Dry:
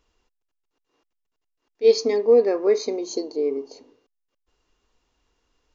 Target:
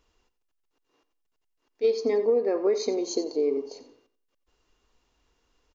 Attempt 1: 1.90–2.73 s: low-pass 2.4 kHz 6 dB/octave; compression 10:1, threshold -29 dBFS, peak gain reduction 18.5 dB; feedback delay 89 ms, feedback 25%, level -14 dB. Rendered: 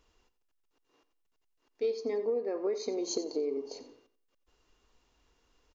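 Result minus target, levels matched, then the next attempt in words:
compression: peak gain reduction +8.5 dB
1.90–2.73 s: low-pass 2.4 kHz 6 dB/octave; compression 10:1, threshold -19.5 dBFS, peak gain reduction 10 dB; feedback delay 89 ms, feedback 25%, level -14 dB

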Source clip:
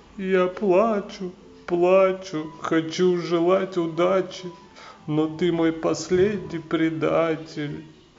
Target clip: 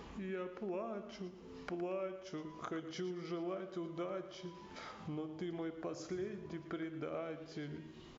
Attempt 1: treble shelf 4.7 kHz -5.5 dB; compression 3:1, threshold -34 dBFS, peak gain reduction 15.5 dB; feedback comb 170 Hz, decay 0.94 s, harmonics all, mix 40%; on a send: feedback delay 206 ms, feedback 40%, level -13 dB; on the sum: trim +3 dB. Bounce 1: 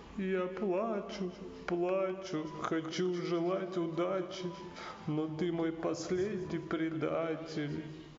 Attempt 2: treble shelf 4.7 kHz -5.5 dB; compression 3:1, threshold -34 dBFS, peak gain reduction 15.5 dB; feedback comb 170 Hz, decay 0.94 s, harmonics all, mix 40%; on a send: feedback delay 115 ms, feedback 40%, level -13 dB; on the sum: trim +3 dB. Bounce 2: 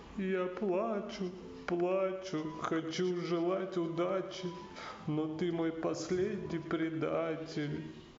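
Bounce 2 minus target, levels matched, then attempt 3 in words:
compression: peak gain reduction -8 dB
treble shelf 4.7 kHz -5.5 dB; compression 3:1, threshold -46 dBFS, peak gain reduction 23.5 dB; feedback comb 170 Hz, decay 0.94 s, harmonics all, mix 40%; on a send: feedback delay 115 ms, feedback 40%, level -13 dB; on the sum: trim +3 dB

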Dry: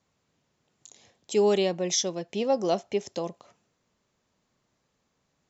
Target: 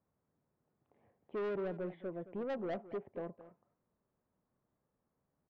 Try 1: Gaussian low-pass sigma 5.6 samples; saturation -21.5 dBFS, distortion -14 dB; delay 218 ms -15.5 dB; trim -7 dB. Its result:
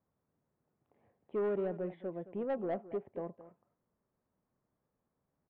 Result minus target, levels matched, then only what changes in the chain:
saturation: distortion -6 dB
change: saturation -27.5 dBFS, distortion -8 dB

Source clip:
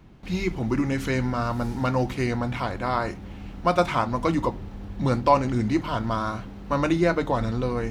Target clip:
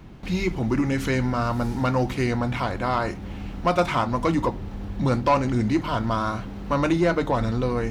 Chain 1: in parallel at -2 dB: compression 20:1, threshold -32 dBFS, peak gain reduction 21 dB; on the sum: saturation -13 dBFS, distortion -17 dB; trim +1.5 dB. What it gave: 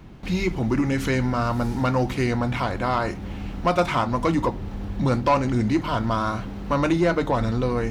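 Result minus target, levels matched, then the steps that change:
compression: peak gain reduction -6.5 dB
change: compression 20:1, threshold -39 dBFS, peak gain reduction 27.5 dB

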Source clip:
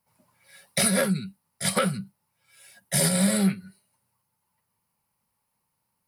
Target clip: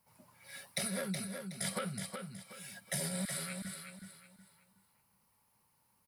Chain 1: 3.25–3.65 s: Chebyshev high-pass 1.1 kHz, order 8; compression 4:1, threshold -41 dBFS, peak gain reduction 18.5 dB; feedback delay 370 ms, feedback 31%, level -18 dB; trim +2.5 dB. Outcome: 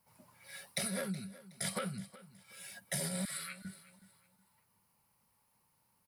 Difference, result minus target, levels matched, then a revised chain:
echo-to-direct -12 dB
3.25–3.65 s: Chebyshev high-pass 1.1 kHz, order 8; compression 4:1, threshold -41 dBFS, peak gain reduction 18.5 dB; feedback delay 370 ms, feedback 31%, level -6 dB; trim +2.5 dB

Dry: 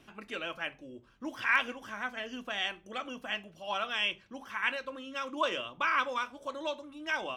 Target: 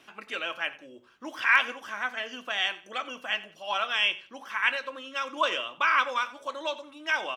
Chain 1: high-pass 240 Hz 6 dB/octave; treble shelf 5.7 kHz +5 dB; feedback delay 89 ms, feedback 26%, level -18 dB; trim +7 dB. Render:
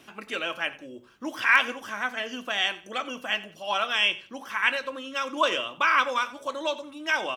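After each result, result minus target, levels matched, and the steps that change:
250 Hz band +5.5 dB; 8 kHz band +3.0 dB
change: high-pass 810 Hz 6 dB/octave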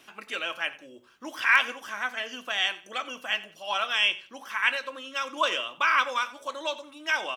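8 kHz band +4.0 dB
change: treble shelf 5.7 kHz -4 dB

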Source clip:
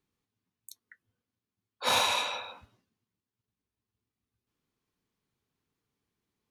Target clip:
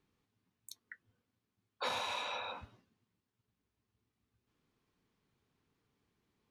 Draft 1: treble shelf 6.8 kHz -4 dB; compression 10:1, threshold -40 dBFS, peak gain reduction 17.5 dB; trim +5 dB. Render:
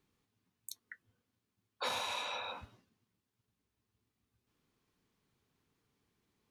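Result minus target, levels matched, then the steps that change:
8 kHz band +4.5 dB
change: treble shelf 6.8 kHz -13 dB

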